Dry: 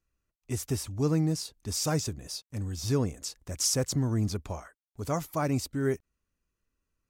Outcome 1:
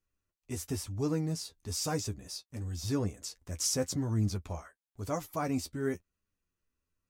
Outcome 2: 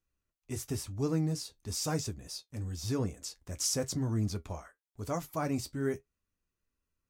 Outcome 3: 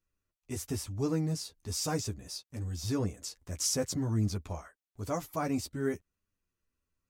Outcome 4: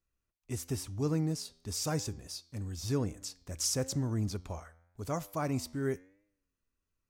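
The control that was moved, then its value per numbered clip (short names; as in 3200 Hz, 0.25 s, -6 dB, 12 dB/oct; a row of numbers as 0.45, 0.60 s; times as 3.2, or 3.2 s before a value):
flange, regen: +28, -52, -9, +91%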